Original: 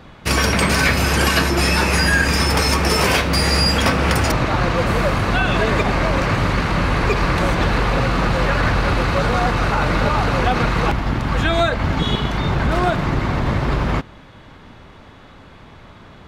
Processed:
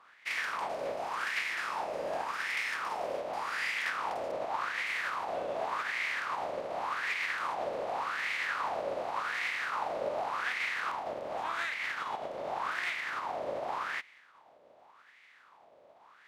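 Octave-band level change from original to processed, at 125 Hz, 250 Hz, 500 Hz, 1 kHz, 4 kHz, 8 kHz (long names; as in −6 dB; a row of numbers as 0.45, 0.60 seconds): below −40 dB, −31.0 dB, −15.5 dB, −13.5 dB, −19.5 dB, −23.0 dB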